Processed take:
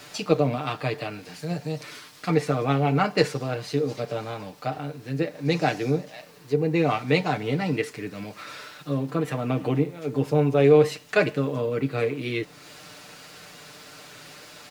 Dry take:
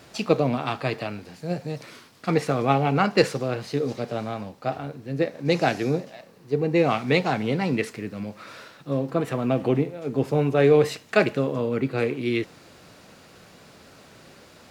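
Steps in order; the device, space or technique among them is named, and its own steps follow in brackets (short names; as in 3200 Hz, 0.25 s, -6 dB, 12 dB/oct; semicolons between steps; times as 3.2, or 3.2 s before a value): comb 6.7 ms; noise-reduction cassette on a plain deck (mismatched tape noise reduction encoder only; wow and flutter 23 cents; white noise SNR 39 dB); gain -3 dB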